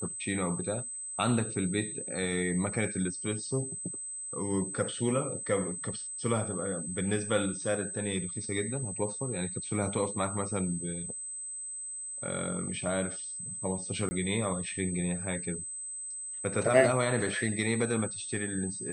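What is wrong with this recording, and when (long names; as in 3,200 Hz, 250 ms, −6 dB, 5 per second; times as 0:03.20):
whistle 8,200 Hz −37 dBFS
0:14.09–0:14.11: drop-out 20 ms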